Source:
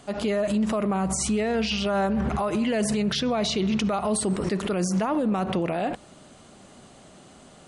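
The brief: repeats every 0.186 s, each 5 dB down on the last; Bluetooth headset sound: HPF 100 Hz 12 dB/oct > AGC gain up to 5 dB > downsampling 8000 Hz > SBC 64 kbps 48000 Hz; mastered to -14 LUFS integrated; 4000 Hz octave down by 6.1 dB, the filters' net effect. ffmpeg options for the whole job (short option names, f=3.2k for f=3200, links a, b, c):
-af "highpass=100,equalizer=f=4k:t=o:g=-8.5,aecho=1:1:186|372|558|744|930|1116|1302:0.562|0.315|0.176|0.0988|0.0553|0.031|0.0173,dynaudnorm=m=5dB,aresample=8000,aresample=44100,volume=10.5dB" -ar 48000 -c:a sbc -b:a 64k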